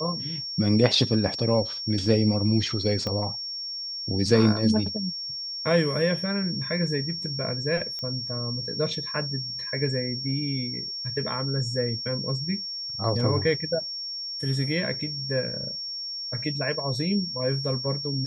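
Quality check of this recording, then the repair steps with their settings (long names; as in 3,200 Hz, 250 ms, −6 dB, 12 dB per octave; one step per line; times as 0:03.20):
whistle 5,500 Hz −31 dBFS
0:03.07: click −17 dBFS
0:07.99: click −21 dBFS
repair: click removal
notch filter 5,500 Hz, Q 30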